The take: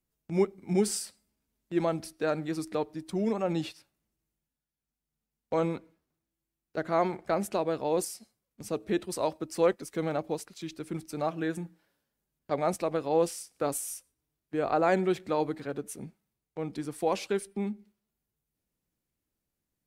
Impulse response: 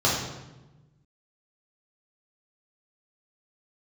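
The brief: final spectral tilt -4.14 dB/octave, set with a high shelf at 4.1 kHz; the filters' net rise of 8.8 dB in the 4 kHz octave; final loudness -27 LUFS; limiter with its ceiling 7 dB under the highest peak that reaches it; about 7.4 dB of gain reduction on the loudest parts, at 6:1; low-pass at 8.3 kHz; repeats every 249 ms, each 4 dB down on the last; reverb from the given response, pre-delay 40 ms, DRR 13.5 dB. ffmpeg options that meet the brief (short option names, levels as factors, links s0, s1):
-filter_complex "[0:a]lowpass=8300,equalizer=f=4000:t=o:g=8,highshelf=f=4100:g=5,acompressor=threshold=0.0447:ratio=6,alimiter=limit=0.0668:level=0:latency=1,aecho=1:1:249|498|747|996|1245|1494|1743|1992|2241:0.631|0.398|0.25|0.158|0.0994|0.0626|0.0394|0.0249|0.0157,asplit=2[s0][s1];[1:a]atrim=start_sample=2205,adelay=40[s2];[s1][s2]afir=irnorm=-1:irlink=0,volume=0.0335[s3];[s0][s3]amix=inputs=2:normalize=0,volume=2.24"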